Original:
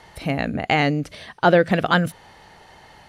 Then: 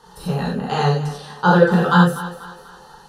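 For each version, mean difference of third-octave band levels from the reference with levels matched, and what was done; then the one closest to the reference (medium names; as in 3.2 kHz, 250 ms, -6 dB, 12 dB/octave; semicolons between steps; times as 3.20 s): 6.5 dB: static phaser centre 440 Hz, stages 8; thinning echo 245 ms, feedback 46%, high-pass 280 Hz, level -14 dB; gated-style reverb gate 120 ms flat, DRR -6 dB; trim -1 dB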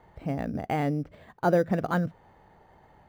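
5.0 dB: tape spacing loss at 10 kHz 29 dB; in parallel at -7 dB: sample-rate reducer 5.4 kHz, jitter 0%; on the sum: treble shelf 2.7 kHz -9 dB; trim -8.5 dB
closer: second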